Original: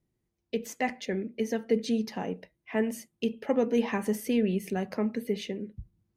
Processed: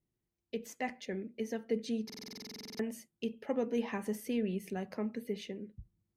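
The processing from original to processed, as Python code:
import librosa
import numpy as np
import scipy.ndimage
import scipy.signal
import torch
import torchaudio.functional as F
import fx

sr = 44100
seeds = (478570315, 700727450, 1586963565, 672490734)

y = fx.buffer_glitch(x, sr, at_s=(2.05,), block=2048, repeats=15)
y = y * 10.0 ** (-7.5 / 20.0)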